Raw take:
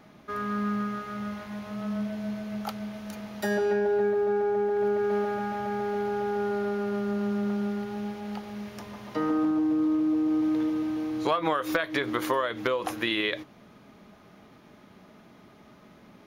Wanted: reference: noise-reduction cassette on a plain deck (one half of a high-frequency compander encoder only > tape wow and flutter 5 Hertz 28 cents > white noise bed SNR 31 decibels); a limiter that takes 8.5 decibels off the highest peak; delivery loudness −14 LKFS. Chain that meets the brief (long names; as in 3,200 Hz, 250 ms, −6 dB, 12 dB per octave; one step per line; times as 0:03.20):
brickwall limiter −21 dBFS
one half of a high-frequency compander encoder only
tape wow and flutter 5 Hz 28 cents
white noise bed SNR 31 dB
level +16 dB